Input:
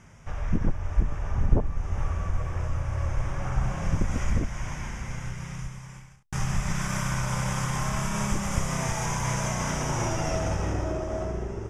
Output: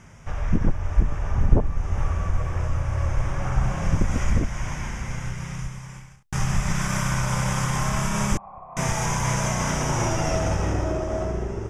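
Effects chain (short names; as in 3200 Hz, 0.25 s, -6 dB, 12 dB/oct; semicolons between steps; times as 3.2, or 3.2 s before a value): 8.37–8.77 vocal tract filter a; gain +4 dB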